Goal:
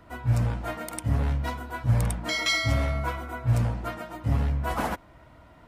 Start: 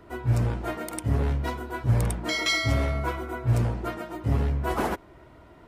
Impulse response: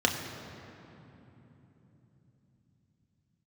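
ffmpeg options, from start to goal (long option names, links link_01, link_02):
-af "equalizer=frequency=380:width_type=o:width=0.36:gain=-14"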